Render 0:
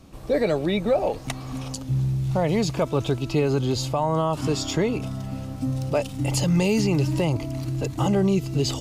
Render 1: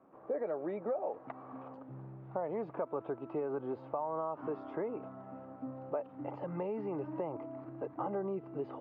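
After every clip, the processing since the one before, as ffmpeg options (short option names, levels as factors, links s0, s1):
-af "highpass=410,acompressor=threshold=0.0501:ratio=6,lowpass=f=1400:w=0.5412,lowpass=f=1400:w=1.3066,volume=0.501"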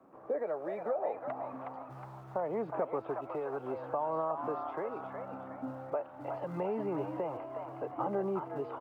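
-filter_complex "[0:a]acrossover=split=120|440[s0][s1][s2];[s0]acrusher=bits=3:mode=log:mix=0:aa=0.000001[s3];[s1]tremolo=f=0.73:d=0.78[s4];[s2]asplit=6[s5][s6][s7][s8][s9][s10];[s6]adelay=365,afreqshift=79,volume=0.562[s11];[s7]adelay=730,afreqshift=158,volume=0.248[s12];[s8]adelay=1095,afreqshift=237,volume=0.108[s13];[s9]adelay=1460,afreqshift=316,volume=0.0479[s14];[s10]adelay=1825,afreqshift=395,volume=0.0211[s15];[s5][s11][s12][s13][s14][s15]amix=inputs=6:normalize=0[s16];[s3][s4][s16]amix=inputs=3:normalize=0,volume=1.41"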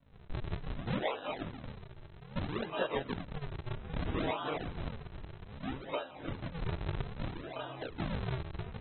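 -af "flanger=delay=18:depth=5.4:speed=1.5,aresample=11025,acrusher=samples=25:mix=1:aa=0.000001:lfo=1:lforange=40:lforate=0.62,aresample=44100,volume=1.12" -ar 24000 -c:a aac -b:a 16k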